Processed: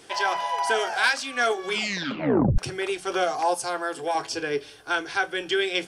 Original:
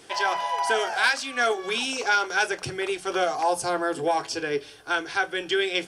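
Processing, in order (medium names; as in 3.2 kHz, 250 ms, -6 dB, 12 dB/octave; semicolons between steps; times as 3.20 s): 1.70 s: tape stop 0.88 s; 3.54–4.15 s: bass shelf 450 Hz -10 dB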